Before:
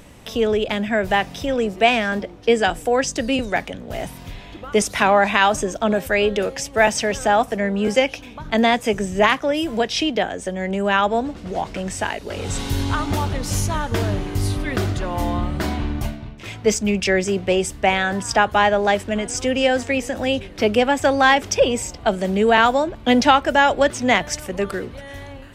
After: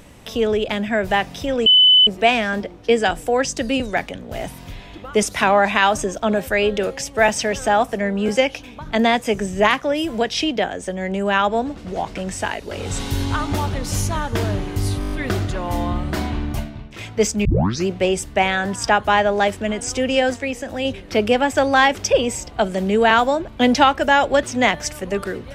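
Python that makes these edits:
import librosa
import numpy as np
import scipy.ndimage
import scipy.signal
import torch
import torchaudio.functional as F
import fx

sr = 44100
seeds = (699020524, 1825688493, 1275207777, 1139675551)

y = fx.edit(x, sr, fx.insert_tone(at_s=1.66, length_s=0.41, hz=3010.0, db=-8.0),
    fx.stutter(start_s=14.59, slice_s=0.02, count=7),
    fx.tape_start(start_s=16.92, length_s=0.42),
    fx.clip_gain(start_s=19.81, length_s=0.51, db=-3.5), tone=tone)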